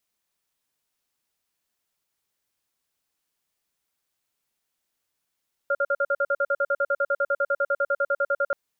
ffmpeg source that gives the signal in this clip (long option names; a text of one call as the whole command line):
ffmpeg -f lavfi -i "aevalsrc='0.075*(sin(2*PI*562*t)+sin(2*PI*1400*t))*clip(min(mod(t,0.1),0.05-mod(t,0.1))/0.005,0,1)':duration=2.83:sample_rate=44100" out.wav